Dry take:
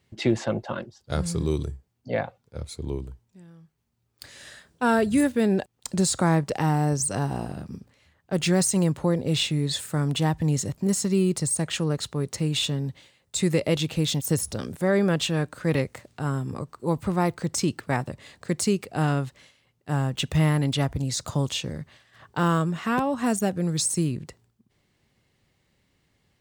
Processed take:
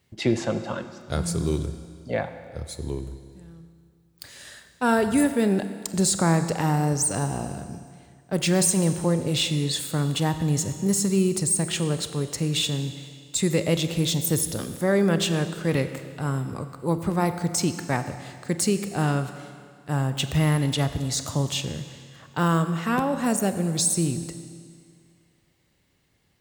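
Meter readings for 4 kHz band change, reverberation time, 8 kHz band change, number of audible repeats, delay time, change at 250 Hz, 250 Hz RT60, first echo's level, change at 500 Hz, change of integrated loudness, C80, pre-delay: +1.5 dB, 2.1 s, +3.5 dB, no echo audible, no echo audible, +0.5 dB, 2.1 s, no echo audible, +0.5 dB, +1.0 dB, 11.0 dB, 30 ms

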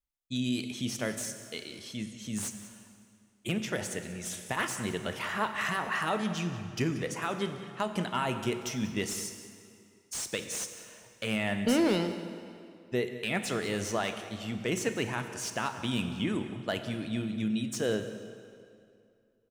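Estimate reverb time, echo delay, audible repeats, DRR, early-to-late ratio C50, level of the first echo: 2.5 s, 187 ms, 1, 8.0 dB, 8.5 dB, −16.0 dB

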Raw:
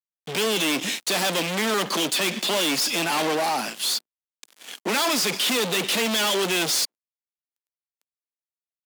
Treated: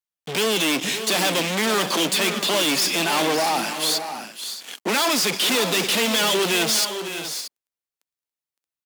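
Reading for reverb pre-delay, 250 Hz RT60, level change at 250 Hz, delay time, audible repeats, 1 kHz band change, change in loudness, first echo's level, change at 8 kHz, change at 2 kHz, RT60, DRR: no reverb audible, no reverb audible, +2.5 dB, 562 ms, 2, +2.5 dB, +2.0 dB, −10.5 dB, +2.5 dB, +2.5 dB, no reverb audible, no reverb audible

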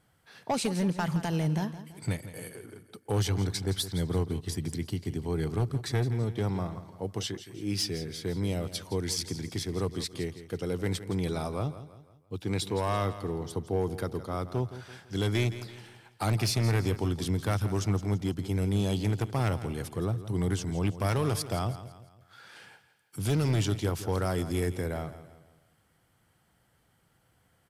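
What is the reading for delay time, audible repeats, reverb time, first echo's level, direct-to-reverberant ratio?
167 ms, 3, no reverb audible, −13.5 dB, no reverb audible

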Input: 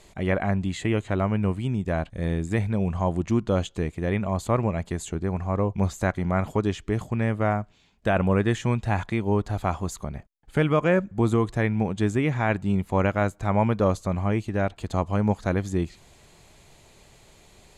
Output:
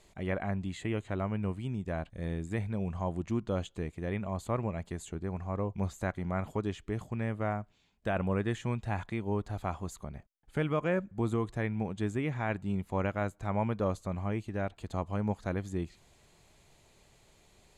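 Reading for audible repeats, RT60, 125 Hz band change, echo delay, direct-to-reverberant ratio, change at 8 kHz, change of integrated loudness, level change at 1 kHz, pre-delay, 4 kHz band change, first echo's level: no echo audible, no reverb audible, −9.0 dB, no echo audible, no reverb audible, −10.0 dB, −9.0 dB, −9.0 dB, no reverb audible, −9.5 dB, no echo audible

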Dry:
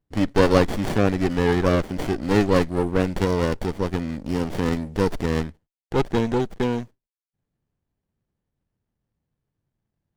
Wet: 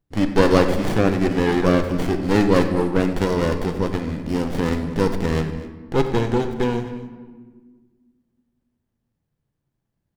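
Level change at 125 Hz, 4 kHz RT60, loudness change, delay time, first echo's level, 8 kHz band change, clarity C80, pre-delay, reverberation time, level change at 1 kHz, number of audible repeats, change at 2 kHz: +1.5 dB, 0.85 s, +2.0 dB, 94 ms, −16.0 dB, +1.5 dB, 9.0 dB, 5 ms, 1.5 s, +2.0 dB, 2, +2.0 dB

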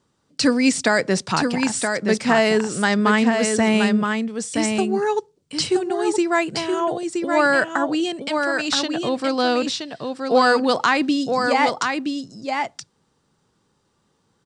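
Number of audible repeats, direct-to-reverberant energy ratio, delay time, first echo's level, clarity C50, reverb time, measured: 1, no reverb audible, 972 ms, −5.0 dB, no reverb audible, no reverb audible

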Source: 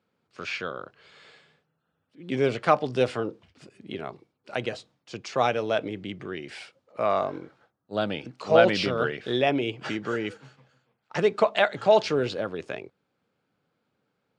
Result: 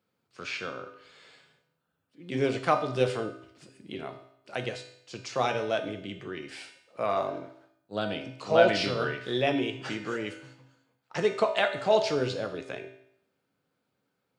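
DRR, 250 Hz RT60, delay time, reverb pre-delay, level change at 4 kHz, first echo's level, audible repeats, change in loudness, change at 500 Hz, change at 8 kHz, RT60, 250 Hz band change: 4.5 dB, 0.70 s, no echo audible, 3 ms, −1.5 dB, no echo audible, no echo audible, −3.0 dB, −3.0 dB, can't be measured, 0.70 s, −3.0 dB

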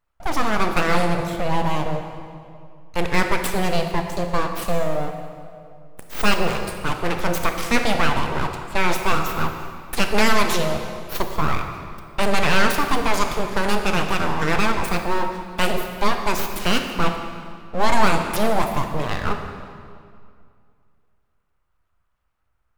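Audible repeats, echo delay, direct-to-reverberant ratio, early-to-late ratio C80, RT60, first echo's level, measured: no echo audible, no echo audible, 5.0 dB, 7.0 dB, 2.3 s, no echo audible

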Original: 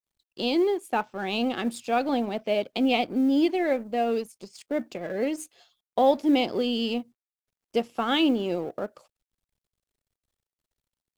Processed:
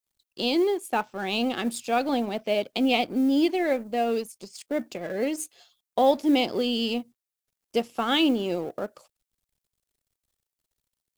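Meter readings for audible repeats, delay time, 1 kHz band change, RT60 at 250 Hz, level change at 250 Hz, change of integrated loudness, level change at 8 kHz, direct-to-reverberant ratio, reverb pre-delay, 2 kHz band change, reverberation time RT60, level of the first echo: no echo audible, no echo audible, 0.0 dB, no reverb audible, 0.0 dB, +0.5 dB, +5.5 dB, no reverb audible, no reverb audible, +1.5 dB, no reverb audible, no echo audible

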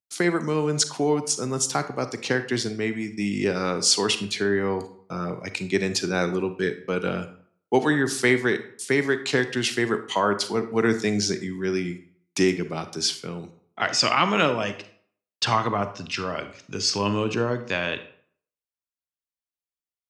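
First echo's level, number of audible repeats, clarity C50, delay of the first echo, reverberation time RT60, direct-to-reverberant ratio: no echo audible, no echo audible, 11.5 dB, no echo audible, 0.55 s, 10.0 dB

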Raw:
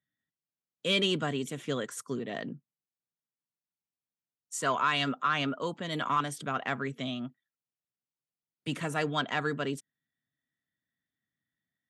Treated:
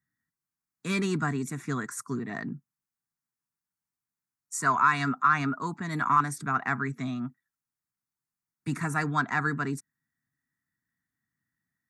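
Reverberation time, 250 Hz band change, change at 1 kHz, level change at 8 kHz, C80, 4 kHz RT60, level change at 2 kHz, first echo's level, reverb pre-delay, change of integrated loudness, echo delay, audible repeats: no reverb audible, +3.5 dB, +5.5 dB, +3.0 dB, no reverb audible, no reverb audible, +4.0 dB, no echo audible, no reverb audible, +3.5 dB, no echo audible, no echo audible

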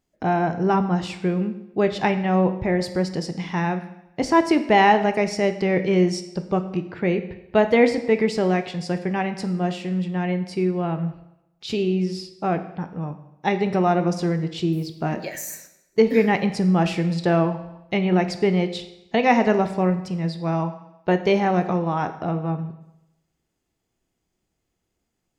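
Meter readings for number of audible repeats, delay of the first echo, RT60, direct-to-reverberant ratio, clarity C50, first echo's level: no echo audible, no echo audible, 0.85 s, 8.5 dB, 11.5 dB, no echo audible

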